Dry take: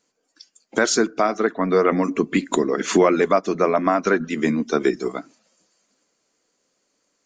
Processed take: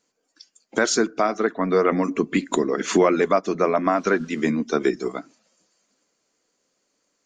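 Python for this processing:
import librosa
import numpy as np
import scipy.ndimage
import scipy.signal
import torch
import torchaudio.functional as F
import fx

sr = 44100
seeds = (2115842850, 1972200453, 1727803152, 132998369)

y = fx.dmg_noise_band(x, sr, seeds[0], low_hz=760.0, high_hz=6300.0, level_db=-58.0, at=(3.95, 4.41), fade=0.02)
y = y * librosa.db_to_amplitude(-1.5)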